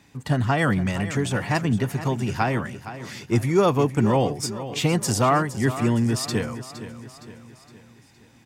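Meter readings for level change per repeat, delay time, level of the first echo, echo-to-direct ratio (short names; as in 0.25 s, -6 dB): -6.5 dB, 0.464 s, -13.0 dB, -12.0 dB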